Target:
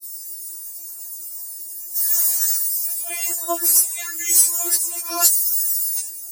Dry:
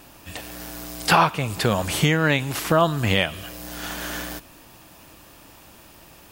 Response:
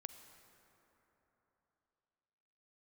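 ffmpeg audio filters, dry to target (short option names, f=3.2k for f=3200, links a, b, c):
-af "areverse,aexciter=amount=15.9:drive=8.6:freq=5.3k,afftfilt=real='re*4*eq(mod(b,16),0)':imag='im*4*eq(mod(b,16),0)':win_size=2048:overlap=0.75,volume=-8dB"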